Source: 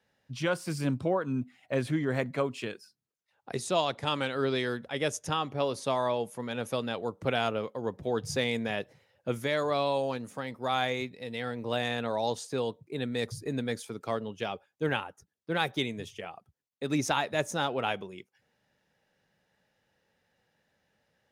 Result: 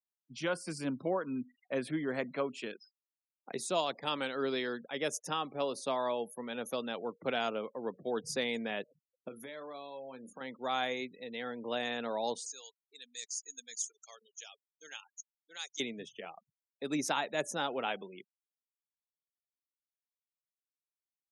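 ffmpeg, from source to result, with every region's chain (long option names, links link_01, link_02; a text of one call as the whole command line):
ffmpeg -i in.wav -filter_complex "[0:a]asettb=1/sr,asplit=3[link_01][link_02][link_03];[link_01]atrim=end=9.284[link_04];[link_02]atrim=start=9.28:end=10.41,asetpts=PTS-STARTPTS,afade=type=in:duration=0.004:curve=qsin,afade=type=out:start_time=1.126:duration=0.004:curve=qsin,acompressor=threshold=-39dB:ratio=4:attack=3.2:release=140:knee=1:detection=peak,asplit=2[link_05][link_06];[link_06]adelay=31,volume=-10dB[link_07];[link_05][link_07]amix=inputs=2:normalize=0,atrim=end_sample=49833[link_08];[link_03]atrim=start=10.406[link_09];[link_04][link_08]acrossfade=duration=0.004:curve1=hsin:curve2=qsin[link_10];[link_10][link_09]acrossfade=duration=0.004:curve1=qsin:curve2=hsin,asettb=1/sr,asplit=3[link_11][link_12][link_13];[link_11]atrim=end=12.464[link_14];[link_12]atrim=start=12.46:end=15.8,asetpts=PTS-STARTPTS,afade=type=in:duration=0.004:curve=qsin,afade=type=out:start_time=3.336:duration=0.004:curve=qsin,lowpass=frequency=6600:width_type=q:width=10,aderivative[link_15];[link_13]atrim=start=15.796[link_16];[link_14][link_15]acrossfade=duration=0.004:curve1=hsin:curve2=qsin[link_17];[link_17][link_16]acrossfade=duration=0.004:curve1=qsin:curve2=hsin,afftfilt=real='re*gte(hypot(re,im),0.00447)':imag='im*gte(hypot(re,im),0.00447)':win_size=1024:overlap=0.75,highpass=frequency=180:width=0.5412,highpass=frequency=180:width=1.3066,highshelf=frequency=8700:gain=7,volume=-4.5dB" out.wav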